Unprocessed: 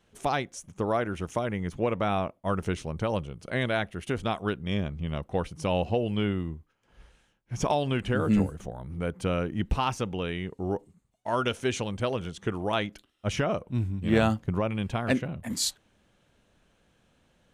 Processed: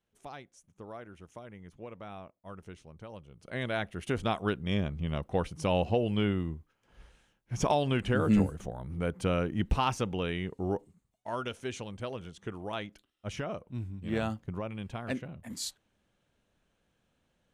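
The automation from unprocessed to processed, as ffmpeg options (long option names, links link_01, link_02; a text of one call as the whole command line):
ffmpeg -i in.wav -af "volume=-1dB,afade=type=in:start_time=3.23:duration=0.31:silence=0.316228,afade=type=in:start_time=3.54:duration=0.64:silence=0.473151,afade=type=out:start_time=10.6:duration=0.84:silence=0.398107" out.wav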